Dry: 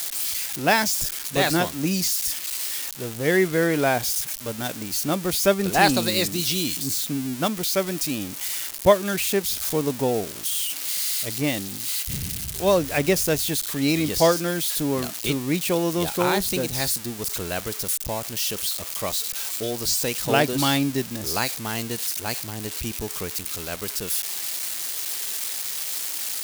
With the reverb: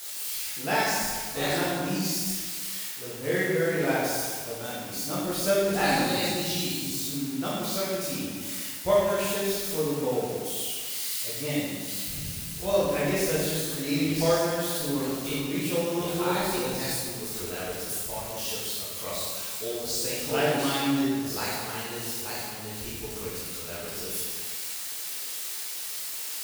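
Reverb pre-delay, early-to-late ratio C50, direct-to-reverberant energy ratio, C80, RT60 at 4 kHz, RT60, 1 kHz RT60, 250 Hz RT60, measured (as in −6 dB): 9 ms, −2.0 dB, −9.0 dB, 0.5 dB, 1.3 s, 1.7 s, 1.7 s, 1.6 s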